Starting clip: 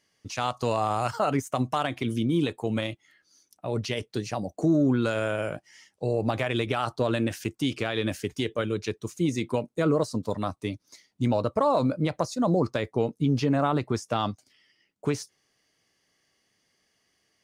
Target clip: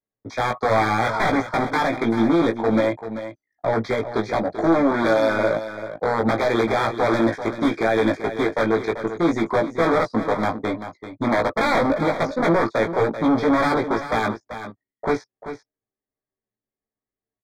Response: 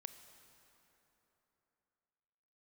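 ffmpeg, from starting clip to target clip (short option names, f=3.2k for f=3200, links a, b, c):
-filter_complex "[0:a]aemphasis=mode=reproduction:type=50kf,acrossover=split=3000[a][b];[b]acompressor=threshold=-47dB:ratio=4:attack=1:release=60[c];[a][c]amix=inputs=2:normalize=0,anlmdn=0.0158,lowshelf=f=240:g=-5,acrossover=split=180|670|1900[d][e][f][g];[d]acompressor=threshold=-40dB:ratio=4[h];[e]alimiter=limit=-24dB:level=0:latency=1:release=59[i];[h][i][f][g]amix=inputs=4:normalize=0,aeval=exprs='0.188*(cos(1*acos(clip(val(0)/0.188,-1,1)))-cos(1*PI/2))+0.0119*(cos(3*acos(clip(val(0)/0.188,-1,1)))-cos(3*PI/2))+0.0133*(cos(4*acos(clip(val(0)/0.188,-1,1)))-cos(4*PI/2))+0.0133*(cos(6*acos(clip(val(0)/0.188,-1,1)))-cos(6*PI/2))+0.015*(cos(7*acos(clip(val(0)/0.188,-1,1)))-cos(7*PI/2))':c=same,aeval=exprs='0.2*sin(PI/2*4.47*val(0)/0.2)':c=same,asplit=2[j][k];[k]highpass=f=720:p=1,volume=18dB,asoftclip=type=tanh:threshold=-13.5dB[l];[j][l]amix=inputs=2:normalize=0,lowpass=f=1.2k:p=1,volume=-6dB,asuperstop=centerf=2800:order=20:qfactor=3.7,asplit=2[m][n];[n]adelay=18,volume=-3.5dB[o];[m][o]amix=inputs=2:normalize=0,aecho=1:1:388:0.282"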